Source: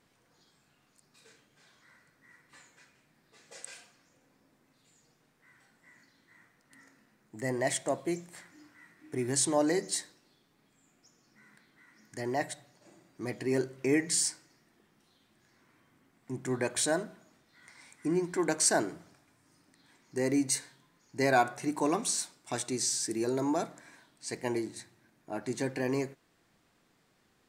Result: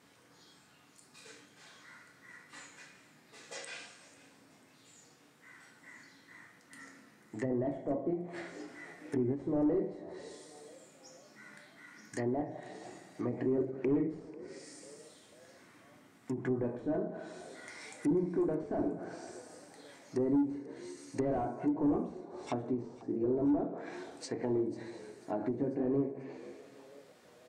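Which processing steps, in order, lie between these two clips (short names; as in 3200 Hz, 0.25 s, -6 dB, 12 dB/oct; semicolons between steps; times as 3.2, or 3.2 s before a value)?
HPF 110 Hz; two-slope reverb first 0.47 s, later 2.1 s, from -19 dB, DRR 2 dB; in parallel at -3 dB: compressor, threshold -40 dBFS, peak gain reduction 21 dB; on the sum: hard clip -24.5 dBFS, distortion -9 dB; treble ducked by the level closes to 500 Hz, closed at -29 dBFS; on a send: frequency-shifting echo 0.492 s, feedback 51%, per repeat +73 Hz, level -19.5 dB; on the sum: ending taper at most 170 dB/s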